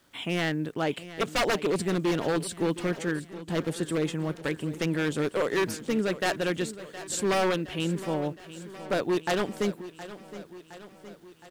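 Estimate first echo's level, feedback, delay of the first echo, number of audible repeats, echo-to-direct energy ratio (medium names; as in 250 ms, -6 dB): -15.0 dB, 59%, 716 ms, 5, -13.0 dB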